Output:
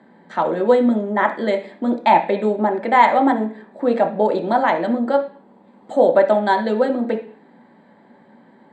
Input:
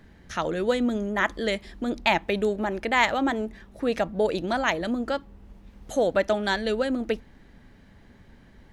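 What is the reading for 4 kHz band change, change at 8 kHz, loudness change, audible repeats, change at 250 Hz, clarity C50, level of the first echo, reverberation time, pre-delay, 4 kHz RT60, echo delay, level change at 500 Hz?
−3.5 dB, can't be measured, +8.0 dB, no echo audible, +7.5 dB, 11.5 dB, no echo audible, 0.40 s, 3 ms, 0.50 s, no echo audible, +8.5 dB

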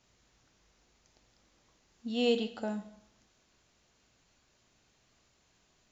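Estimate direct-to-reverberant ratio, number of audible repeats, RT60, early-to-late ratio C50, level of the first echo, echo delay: 8.0 dB, no echo audible, 0.70 s, 13.0 dB, no echo audible, no echo audible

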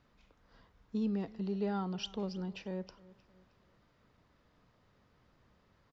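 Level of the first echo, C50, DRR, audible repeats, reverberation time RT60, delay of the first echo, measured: −21.5 dB, no reverb audible, no reverb audible, 2, no reverb audible, 312 ms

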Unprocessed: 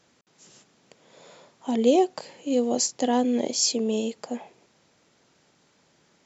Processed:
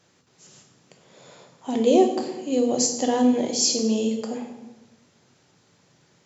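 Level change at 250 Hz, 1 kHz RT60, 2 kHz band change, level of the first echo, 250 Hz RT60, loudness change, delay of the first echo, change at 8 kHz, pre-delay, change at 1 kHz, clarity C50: +3.0 dB, 0.95 s, +1.5 dB, no echo audible, 1.4 s, +2.5 dB, no echo audible, can't be measured, 3 ms, +1.0 dB, 7.5 dB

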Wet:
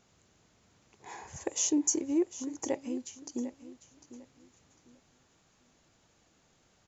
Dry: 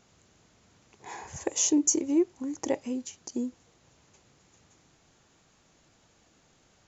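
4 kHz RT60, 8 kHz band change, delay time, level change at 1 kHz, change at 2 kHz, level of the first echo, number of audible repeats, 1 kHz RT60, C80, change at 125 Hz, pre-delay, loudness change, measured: no reverb audible, can't be measured, 750 ms, −4.0 dB, −4.0 dB, −14.5 dB, 2, no reverb audible, no reverb audible, −4.0 dB, no reverb audible, −4.0 dB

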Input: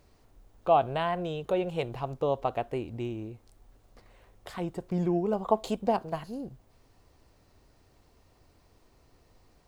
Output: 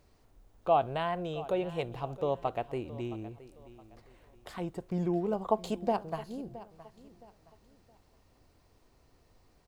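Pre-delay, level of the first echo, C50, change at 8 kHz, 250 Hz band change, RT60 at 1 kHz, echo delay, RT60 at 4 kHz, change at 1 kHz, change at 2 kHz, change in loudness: no reverb audible, −17.0 dB, no reverb audible, −3.0 dB, −3.0 dB, no reverb audible, 668 ms, no reverb audible, −3.0 dB, −3.0 dB, −3.0 dB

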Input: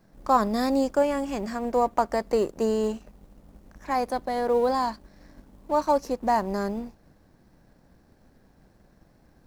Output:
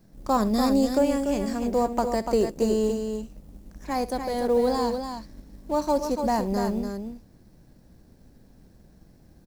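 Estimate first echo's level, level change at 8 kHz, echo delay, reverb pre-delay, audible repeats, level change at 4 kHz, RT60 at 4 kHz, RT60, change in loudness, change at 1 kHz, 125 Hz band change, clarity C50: −17.0 dB, +5.0 dB, 67 ms, no reverb audible, 2, +3.0 dB, no reverb audible, no reverb audible, +0.5 dB, −2.5 dB, +4.5 dB, no reverb audible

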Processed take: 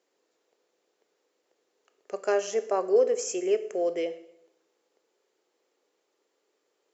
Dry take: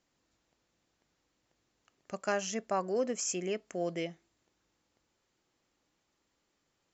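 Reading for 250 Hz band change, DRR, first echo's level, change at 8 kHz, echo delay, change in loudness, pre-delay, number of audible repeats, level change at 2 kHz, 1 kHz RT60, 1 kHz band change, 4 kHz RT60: +2.0 dB, 11.5 dB, no echo audible, can't be measured, no echo audible, +7.5 dB, 19 ms, no echo audible, +0.5 dB, 0.75 s, +3.0 dB, 0.70 s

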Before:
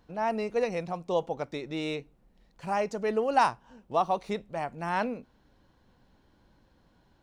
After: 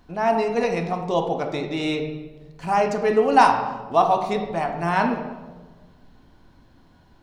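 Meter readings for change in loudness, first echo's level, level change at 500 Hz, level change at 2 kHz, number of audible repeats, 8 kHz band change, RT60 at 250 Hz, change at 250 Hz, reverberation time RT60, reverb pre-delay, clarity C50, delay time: +8.5 dB, no echo audible, +8.0 dB, +8.5 dB, no echo audible, +7.5 dB, 1.7 s, +9.5 dB, 1.3 s, 3 ms, 6.5 dB, no echo audible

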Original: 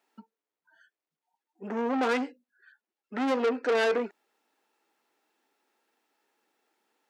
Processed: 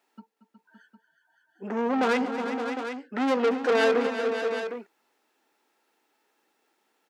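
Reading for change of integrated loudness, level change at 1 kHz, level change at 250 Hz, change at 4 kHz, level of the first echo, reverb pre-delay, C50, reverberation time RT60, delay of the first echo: +2.5 dB, +4.0 dB, +4.0 dB, +4.0 dB, −13.5 dB, no reverb audible, no reverb audible, no reverb audible, 231 ms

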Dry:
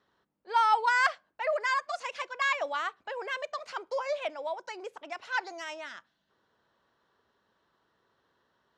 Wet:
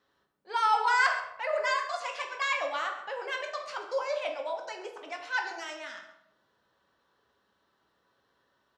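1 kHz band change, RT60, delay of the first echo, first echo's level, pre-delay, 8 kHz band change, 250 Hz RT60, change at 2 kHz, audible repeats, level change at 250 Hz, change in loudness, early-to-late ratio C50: −0.5 dB, 0.85 s, 135 ms, −15.5 dB, 3 ms, +2.0 dB, 0.90 s, +0.5 dB, 1, −0.5 dB, 0.0 dB, 7.0 dB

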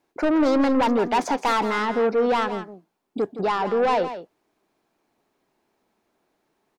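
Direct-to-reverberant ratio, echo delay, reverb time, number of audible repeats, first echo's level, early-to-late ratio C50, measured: no reverb audible, 167 ms, no reverb audible, 1, −11.5 dB, no reverb audible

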